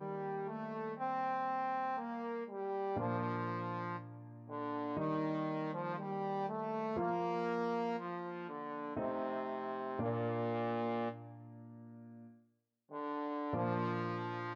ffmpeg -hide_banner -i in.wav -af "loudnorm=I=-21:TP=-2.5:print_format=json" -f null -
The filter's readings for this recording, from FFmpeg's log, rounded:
"input_i" : "-39.0",
"input_tp" : "-23.3",
"input_lra" : "2.7",
"input_thresh" : "-49.6",